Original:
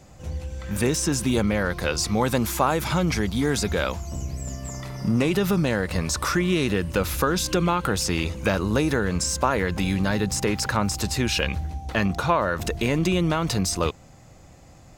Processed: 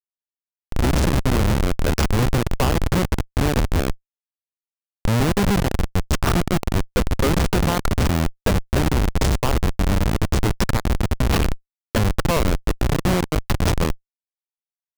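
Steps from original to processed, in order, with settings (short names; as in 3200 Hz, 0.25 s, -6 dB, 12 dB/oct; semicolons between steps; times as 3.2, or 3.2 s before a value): Schmitt trigger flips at -19 dBFS; gain +7.5 dB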